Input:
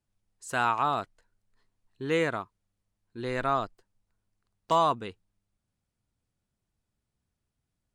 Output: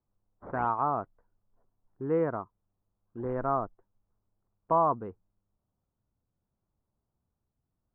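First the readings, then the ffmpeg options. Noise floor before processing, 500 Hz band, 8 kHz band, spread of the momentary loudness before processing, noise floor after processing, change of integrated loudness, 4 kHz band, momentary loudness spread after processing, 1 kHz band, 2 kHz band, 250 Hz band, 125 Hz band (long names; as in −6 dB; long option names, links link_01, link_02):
−84 dBFS, 0.0 dB, below −30 dB, 18 LU, −85 dBFS, −2.0 dB, below −30 dB, 18 LU, −1.5 dB, −11.5 dB, 0.0 dB, 0.0 dB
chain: -af "acrusher=samples=10:mix=1:aa=0.000001:lfo=1:lforange=16:lforate=0.76,lowpass=frequency=1200:width=0.5412,lowpass=frequency=1200:width=1.3066"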